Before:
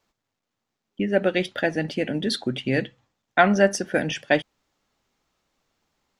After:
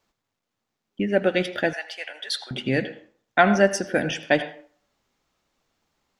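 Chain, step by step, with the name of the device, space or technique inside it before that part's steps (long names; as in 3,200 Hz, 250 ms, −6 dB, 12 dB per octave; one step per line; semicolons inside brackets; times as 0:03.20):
filtered reverb send (on a send: high-pass filter 280 Hz 12 dB per octave + low-pass filter 5,200 Hz 12 dB per octave + convolution reverb RT60 0.50 s, pre-delay 75 ms, DRR 11 dB)
0:01.73–0:02.51: on the sum: high-pass filter 780 Hz 24 dB per octave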